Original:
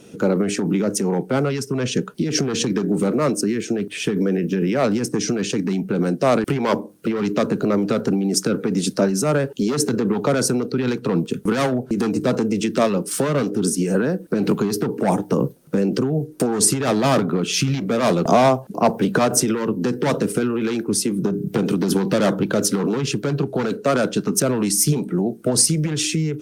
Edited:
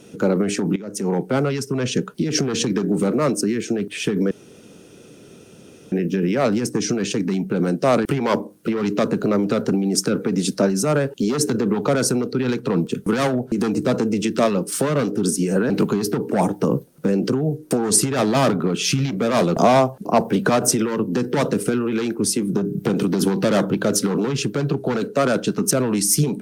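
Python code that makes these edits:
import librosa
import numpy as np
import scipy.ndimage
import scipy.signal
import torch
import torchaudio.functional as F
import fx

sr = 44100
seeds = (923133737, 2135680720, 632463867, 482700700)

y = fx.edit(x, sr, fx.fade_in_from(start_s=0.76, length_s=0.33, curve='qua', floor_db=-14.5),
    fx.insert_room_tone(at_s=4.31, length_s=1.61),
    fx.cut(start_s=14.09, length_s=0.3), tone=tone)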